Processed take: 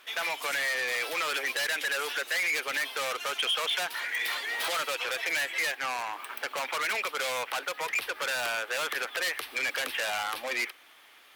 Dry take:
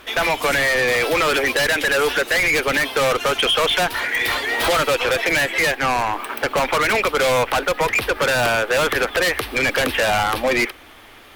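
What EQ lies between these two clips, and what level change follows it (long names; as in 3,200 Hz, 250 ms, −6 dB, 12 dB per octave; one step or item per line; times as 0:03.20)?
high-pass filter 1,400 Hz 6 dB per octave
−8.5 dB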